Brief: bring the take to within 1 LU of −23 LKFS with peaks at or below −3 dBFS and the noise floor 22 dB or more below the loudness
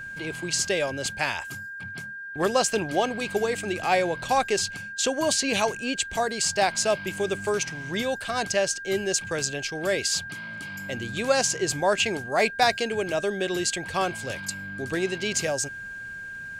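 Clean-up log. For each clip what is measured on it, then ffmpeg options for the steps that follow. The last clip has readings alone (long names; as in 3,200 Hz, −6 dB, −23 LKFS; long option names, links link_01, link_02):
interfering tone 1,600 Hz; level of the tone −35 dBFS; integrated loudness −26.0 LKFS; sample peak −8.0 dBFS; target loudness −23.0 LKFS
→ -af "bandreject=frequency=1600:width=30"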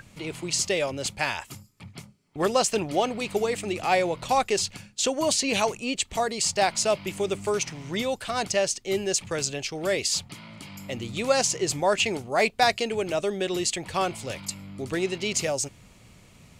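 interfering tone none found; integrated loudness −26.0 LKFS; sample peak −8.0 dBFS; target loudness −23.0 LKFS
→ -af "volume=3dB"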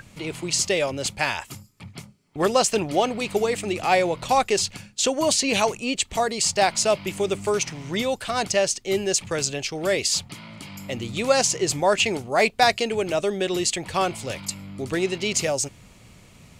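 integrated loudness −23.0 LKFS; sample peak −5.0 dBFS; background noise floor −51 dBFS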